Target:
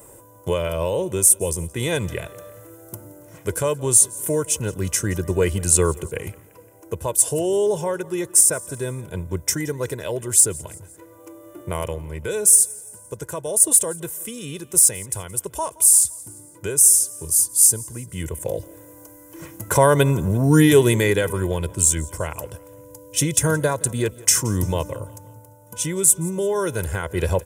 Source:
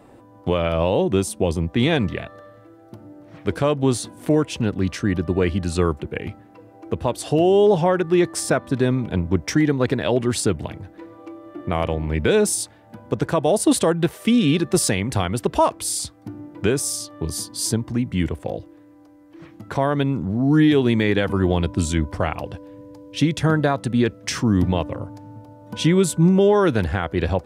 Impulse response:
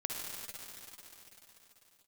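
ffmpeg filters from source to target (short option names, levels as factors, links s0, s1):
-filter_complex "[0:a]aecho=1:1:2:0.62,aexciter=amount=12.2:drive=6.5:freq=6400,dynaudnorm=f=130:g=13:m=3.76,asplit=2[s0][s1];[s1]aecho=0:1:172|344|516:0.0794|0.0397|0.0199[s2];[s0][s2]amix=inputs=2:normalize=0,volume=0.891"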